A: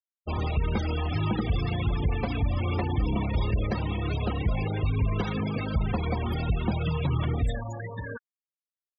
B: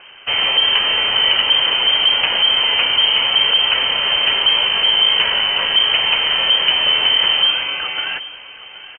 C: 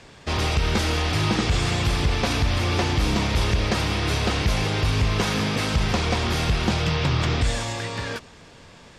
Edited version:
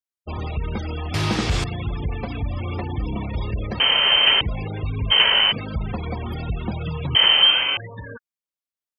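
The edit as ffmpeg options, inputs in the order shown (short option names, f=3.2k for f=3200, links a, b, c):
-filter_complex "[1:a]asplit=3[a][b][c];[0:a]asplit=5[d][e][f][g][h];[d]atrim=end=1.142[i];[2:a]atrim=start=1.138:end=1.642[j];[e]atrim=start=1.638:end=3.802[k];[a]atrim=start=3.798:end=4.412[l];[f]atrim=start=4.408:end=5.12[m];[b]atrim=start=5.1:end=5.53[n];[g]atrim=start=5.51:end=7.152[o];[c]atrim=start=7.148:end=7.772[p];[h]atrim=start=7.768[q];[i][j]acrossfade=d=0.004:c1=hsin:c2=hsin[r];[r][k]acrossfade=d=0.004:c1=hsin:c2=hsin[s];[s][l]acrossfade=d=0.004:c1=hsin:c2=hsin[t];[t][m]acrossfade=d=0.004:c1=hsin:c2=hsin[u];[u][n]acrossfade=d=0.02:c1=tri:c2=tri[v];[v][o]acrossfade=d=0.02:c1=tri:c2=tri[w];[w][p]acrossfade=d=0.004:c1=hsin:c2=hsin[x];[x][q]acrossfade=d=0.004:c1=hsin:c2=hsin"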